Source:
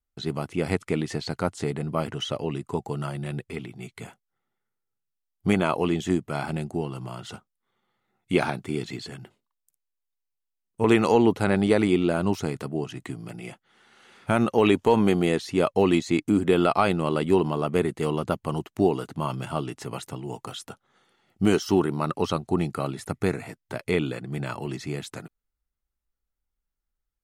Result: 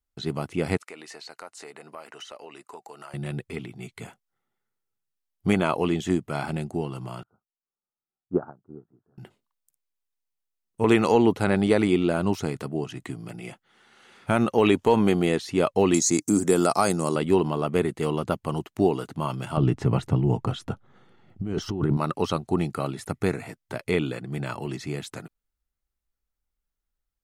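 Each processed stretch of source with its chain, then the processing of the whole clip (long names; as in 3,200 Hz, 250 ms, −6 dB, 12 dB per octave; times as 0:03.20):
0:00.77–0:03.14: high-pass filter 620 Hz + notch filter 3,300 Hz, Q 6.9 + downward compressor 2.5 to 1, threshold −41 dBFS
0:07.23–0:09.18: elliptic low-pass filter 1,400 Hz + expander for the loud parts 2.5 to 1, over −35 dBFS
0:15.94–0:17.16: high-pass filter 110 Hz + high shelf with overshoot 4,400 Hz +12.5 dB, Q 3
0:19.57–0:21.97: RIAA equalisation playback + compressor whose output falls as the input rises −23 dBFS
whole clip: no processing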